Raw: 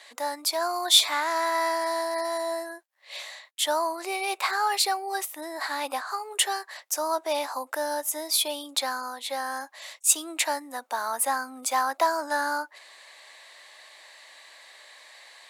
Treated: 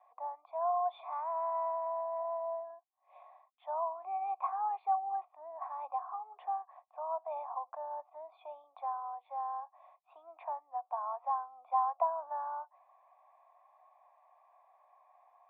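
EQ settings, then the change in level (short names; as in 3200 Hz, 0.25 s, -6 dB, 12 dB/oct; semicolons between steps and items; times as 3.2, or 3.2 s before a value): vocal tract filter a; HPF 500 Hz 24 dB/oct; +2.0 dB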